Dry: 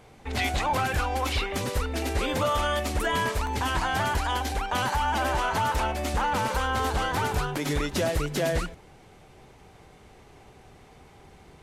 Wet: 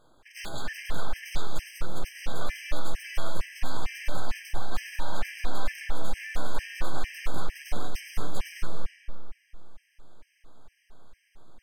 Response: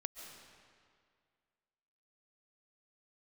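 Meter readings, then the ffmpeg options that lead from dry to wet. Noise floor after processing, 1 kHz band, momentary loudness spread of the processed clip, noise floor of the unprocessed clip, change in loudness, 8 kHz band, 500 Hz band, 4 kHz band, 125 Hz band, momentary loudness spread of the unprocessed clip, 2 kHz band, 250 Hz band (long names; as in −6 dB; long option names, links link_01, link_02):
−69 dBFS, −14.0 dB, 5 LU, −53 dBFS, −11.0 dB, −8.5 dB, −12.5 dB, −9.0 dB, −9.5 dB, 3 LU, −9.0 dB, −11.5 dB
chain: -filter_complex "[0:a]aeval=exprs='abs(val(0))':channel_layout=same[link_01];[1:a]atrim=start_sample=2205[link_02];[link_01][link_02]afir=irnorm=-1:irlink=0,afftfilt=real='re*gt(sin(2*PI*2.2*pts/sr)*(1-2*mod(floor(b*sr/1024/1600),2)),0)':imag='im*gt(sin(2*PI*2.2*pts/sr)*(1-2*mod(floor(b*sr/1024/1600),2)),0)':win_size=1024:overlap=0.75,volume=-2.5dB"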